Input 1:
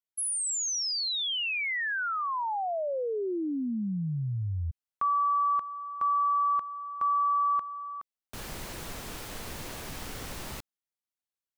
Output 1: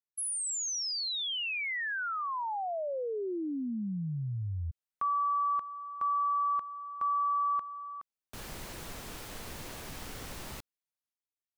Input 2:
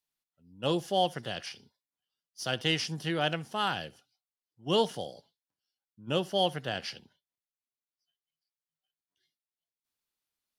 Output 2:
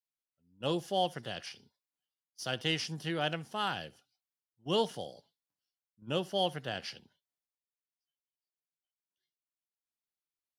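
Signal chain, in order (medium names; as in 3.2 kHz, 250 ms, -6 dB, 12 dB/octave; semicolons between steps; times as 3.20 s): gate with hold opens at -43 dBFS, hold 469 ms, range -8 dB; trim -3.5 dB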